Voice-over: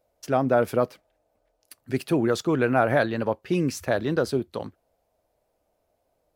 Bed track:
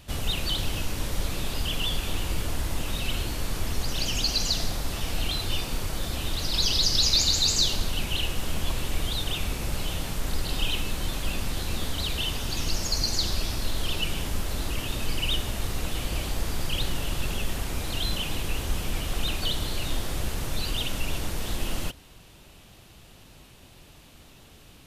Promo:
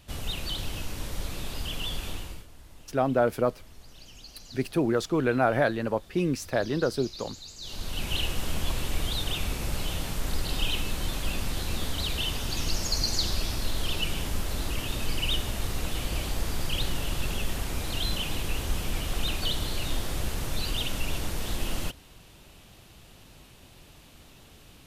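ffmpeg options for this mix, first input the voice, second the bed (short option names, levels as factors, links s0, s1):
-filter_complex "[0:a]adelay=2650,volume=0.75[s0];[1:a]volume=5.96,afade=t=out:st=2.07:d=0.39:silence=0.149624,afade=t=in:st=7.6:d=0.54:silence=0.0944061[s1];[s0][s1]amix=inputs=2:normalize=0"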